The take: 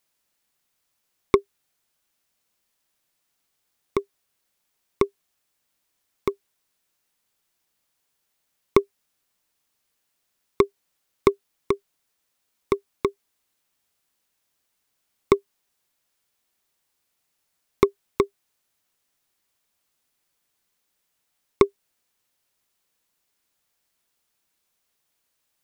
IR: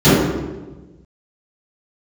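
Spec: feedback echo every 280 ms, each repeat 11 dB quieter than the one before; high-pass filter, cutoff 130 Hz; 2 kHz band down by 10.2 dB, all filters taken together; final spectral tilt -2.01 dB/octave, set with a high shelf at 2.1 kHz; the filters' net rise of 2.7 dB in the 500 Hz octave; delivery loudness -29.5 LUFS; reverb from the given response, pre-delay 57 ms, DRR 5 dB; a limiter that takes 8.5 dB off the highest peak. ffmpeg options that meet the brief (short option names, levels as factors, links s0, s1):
-filter_complex "[0:a]highpass=130,equalizer=f=500:t=o:g=4.5,equalizer=f=2000:t=o:g=-7,highshelf=f=2100:g=-8,alimiter=limit=0.398:level=0:latency=1,aecho=1:1:280|560|840:0.282|0.0789|0.0221,asplit=2[s0][s1];[1:a]atrim=start_sample=2205,adelay=57[s2];[s1][s2]afir=irnorm=-1:irlink=0,volume=0.0178[s3];[s0][s3]amix=inputs=2:normalize=0,volume=0.501"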